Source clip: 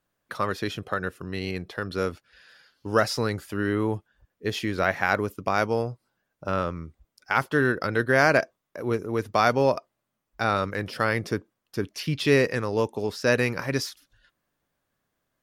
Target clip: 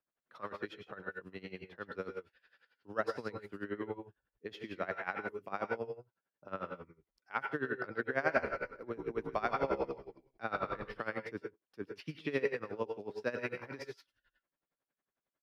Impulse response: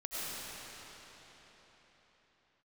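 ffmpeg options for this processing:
-filter_complex "[0:a]acrossover=split=160 3600:gain=0.251 1 0.141[link_01][link_02][link_03];[link_01][link_02][link_03]amix=inputs=3:normalize=0,asplit=3[link_04][link_05][link_06];[link_04]afade=type=out:start_time=8.35:duration=0.02[link_07];[link_05]asplit=5[link_08][link_09][link_10][link_11][link_12];[link_09]adelay=132,afreqshift=-70,volume=-4dB[link_13];[link_10]adelay=264,afreqshift=-140,volume=-14.2dB[link_14];[link_11]adelay=396,afreqshift=-210,volume=-24.3dB[link_15];[link_12]adelay=528,afreqshift=-280,volume=-34.5dB[link_16];[link_08][link_13][link_14][link_15][link_16]amix=inputs=5:normalize=0,afade=type=in:start_time=8.35:duration=0.02,afade=type=out:start_time=10.88:duration=0.02[link_17];[link_06]afade=type=in:start_time=10.88:duration=0.02[link_18];[link_07][link_17][link_18]amix=inputs=3:normalize=0[link_19];[1:a]atrim=start_sample=2205,atrim=end_sample=4410,asetrate=32193,aresample=44100[link_20];[link_19][link_20]afir=irnorm=-1:irlink=0,aeval=exprs='val(0)*pow(10,-18*(0.5-0.5*cos(2*PI*11*n/s))/20)':channel_layout=same,volume=-5.5dB"

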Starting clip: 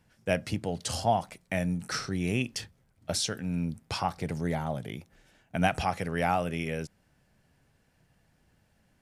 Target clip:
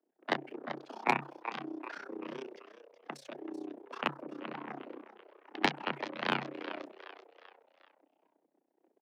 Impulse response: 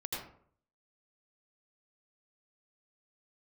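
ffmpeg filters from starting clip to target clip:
-filter_complex "[0:a]aeval=exprs='val(0)+0.5*0.0251*sgn(val(0))':channel_layout=same,afwtdn=0.0141,acrossover=split=160 2200:gain=0.0631 1 0.126[link_01][link_02][link_03];[link_01][link_02][link_03]amix=inputs=3:normalize=0,aeval=exprs='0.237*(cos(1*acos(clip(val(0)/0.237,-1,1)))-cos(1*PI/2))+0.0944*(cos(3*acos(clip(val(0)/0.237,-1,1)))-cos(3*PI/2))':channel_layout=same,agate=range=-27dB:threshold=-55dB:ratio=16:detection=peak,asplit=5[link_04][link_05][link_06][link_07][link_08];[link_05]adelay=381,afreqshift=81,volume=-13dB[link_09];[link_06]adelay=762,afreqshift=162,volume=-19.9dB[link_10];[link_07]adelay=1143,afreqshift=243,volume=-26.9dB[link_11];[link_08]adelay=1524,afreqshift=324,volume=-33.8dB[link_12];[link_04][link_09][link_10][link_11][link_12]amix=inputs=5:normalize=0,tremolo=f=31:d=0.919,lowshelf=frequency=180:gain=3,afreqshift=140,acrossover=split=240|2200[link_13][link_14][link_15];[link_14]volume=27.5dB,asoftclip=hard,volume=-27.5dB[link_16];[link_13][link_16][link_15]amix=inputs=3:normalize=0,volume=8.5dB"

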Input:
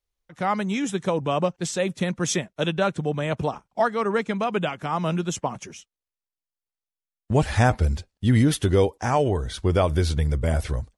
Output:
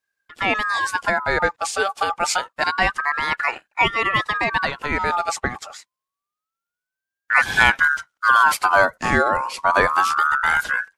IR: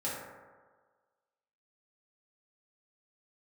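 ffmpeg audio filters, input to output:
-af "aeval=exprs='val(0)*sin(2*PI*1300*n/s+1300*0.25/0.27*sin(2*PI*0.27*n/s))':channel_layout=same,volume=6dB"

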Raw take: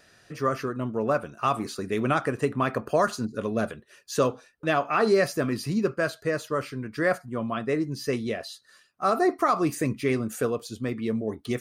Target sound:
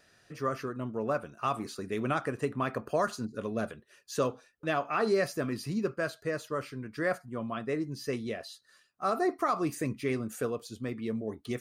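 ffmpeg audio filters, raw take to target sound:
ffmpeg -i in.wav -af "volume=-6dB" out.wav

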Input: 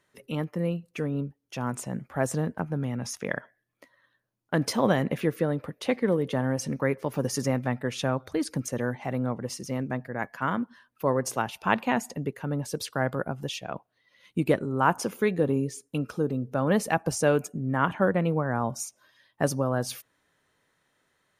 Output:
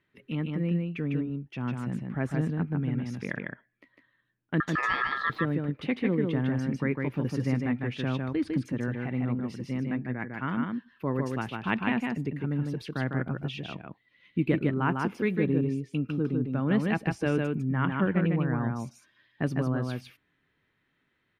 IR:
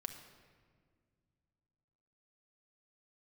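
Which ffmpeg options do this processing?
-filter_complex "[0:a]firequalizer=gain_entry='entry(330,0);entry(530,-11);entry(2300,0);entry(6600,-22)':delay=0.05:min_phase=1,asettb=1/sr,asplit=3[link_01][link_02][link_03];[link_01]atrim=end=4.604[link_04];[link_02]atrim=start=4.6:end=5.3,asetpts=PTS-STARTPTS,afade=type=in:duration=0.004:curve=qsin,afade=type=out:start_time=0.696:duration=0.004:curve=qsin,aeval=exprs='val(0)*sin(2*PI*1500*n/s)':channel_layout=same[link_05];[link_03]atrim=start=5.296[link_06];[link_04][link_05]acrossfade=duration=0.004:curve1=hsin:curve2=qsin[link_07];[link_07][link_06]acrossfade=duration=0.004:curve1=qsin:curve2=hsin,aecho=1:1:152:0.668"

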